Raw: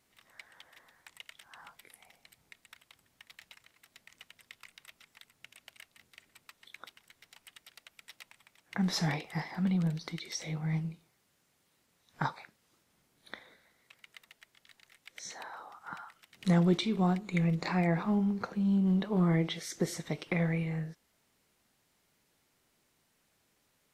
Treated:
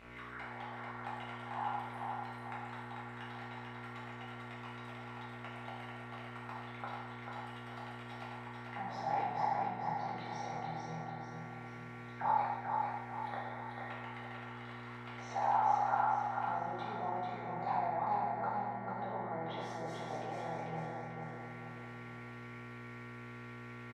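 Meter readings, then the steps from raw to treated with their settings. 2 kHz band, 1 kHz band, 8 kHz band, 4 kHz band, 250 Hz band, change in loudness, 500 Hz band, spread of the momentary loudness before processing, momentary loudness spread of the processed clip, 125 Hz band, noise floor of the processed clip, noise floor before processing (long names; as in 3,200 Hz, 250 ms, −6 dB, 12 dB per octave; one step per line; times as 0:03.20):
−2.0 dB, +9.5 dB, below −15 dB, −10.0 dB, −14.5 dB, −8.5 dB, −3.0 dB, 20 LU, 13 LU, −12.0 dB, −48 dBFS, −74 dBFS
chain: brickwall limiter −25.5 dBFS, peak gain reduction 10.5 dB
reversed playback
downward compressor 6 to 1, threshold −45 dBFS, peak gain reduction 15.5 dB
reversed playback
envelope filter 790–2,800 Hz, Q 6.8, down, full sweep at −55 dBFS
hum with harmonics 60 Hz, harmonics 38, −78 dBFS −2 dB per octave
on a send: repeating echo 442 ms, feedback 46%, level −4 dB
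on the sum: reverb whose tail is shaped and stops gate 310 ms falling, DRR −6.5 dB
level +18 dB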